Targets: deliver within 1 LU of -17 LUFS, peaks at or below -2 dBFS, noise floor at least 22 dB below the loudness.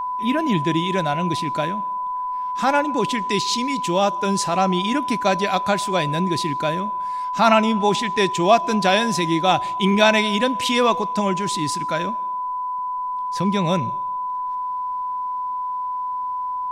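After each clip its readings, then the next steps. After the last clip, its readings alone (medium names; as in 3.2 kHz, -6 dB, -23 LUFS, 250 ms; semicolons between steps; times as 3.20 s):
steady tone 1 kHz; tone level -23 dBFS; loudness -21.0 LUFS; peak level -1.5 dBFS; loudness target -17.0 LUFS
-> band-stop 1 kHz, Q 30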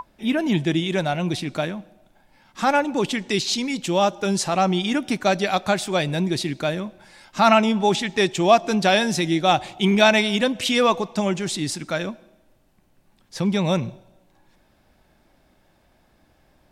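steady tone not found; loudness -21.0 LUFS; peak level -2.5 dBFS; loudness target -17.0 LUFS
-> trim +4 dB; peak limiter -2 dBFS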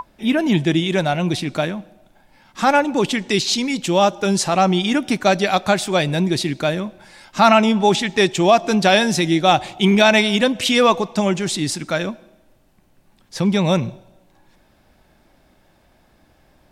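loudness -17.5 LUFS; peak level -2.0 dBFS; noise floor -57 dBFS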